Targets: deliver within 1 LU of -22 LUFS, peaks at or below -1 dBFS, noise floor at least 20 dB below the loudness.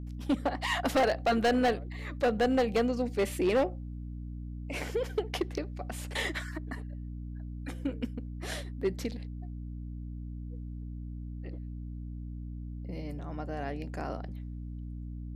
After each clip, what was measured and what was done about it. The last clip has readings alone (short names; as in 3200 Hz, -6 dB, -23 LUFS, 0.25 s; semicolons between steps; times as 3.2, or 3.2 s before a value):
clipped 1.3%; flat tops at -21.5 dBFS; hum 60 Hz; harmonics up to 300 Hz; hum level -37 dBFS; loudness -33.5 LUFS; peak -21.5 dBFS; loudness target -22.0 LUFS
-> clip repair -21.5 dBFS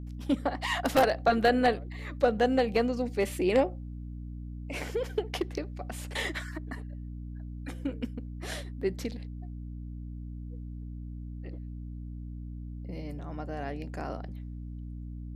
clipped 0.0%; hum 60 Hz; harmonics up to 300 Hz; hum level -37 dBFS
-> notches 60/120/180/240/300 Hz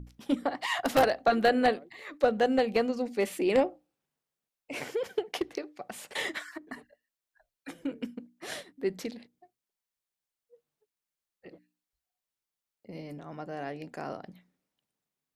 hum none; loudness -30.5 LUFS; peak -11.5 dBFS; loudness target -22.0 LUFS
-> gain +8.5 dB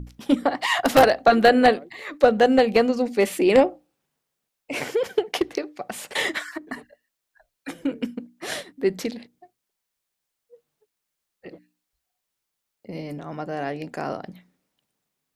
loudness -22.0 LUFS; peak -3.0 dBFS; noise floor -82 dBFS